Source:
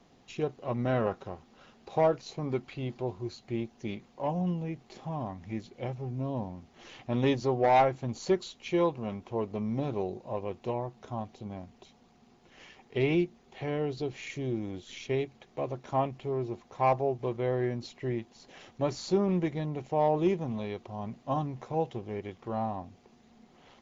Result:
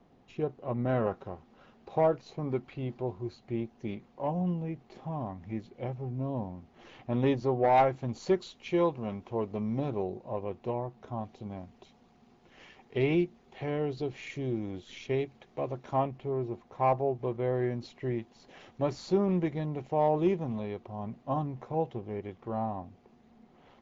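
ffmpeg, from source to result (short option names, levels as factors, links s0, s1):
-af "asetnsamples=n=441:p=0,asendcmd='0.89 lowpass f 1800;7.78 lowpass f 3700;9.9 lowpass f 1900;11.23 lowpass f 3700;16.03 lowpass f 1800;17.55 lowpass f 3100;20.59 lowpass f 1700',lowpass=f=1200:p=1"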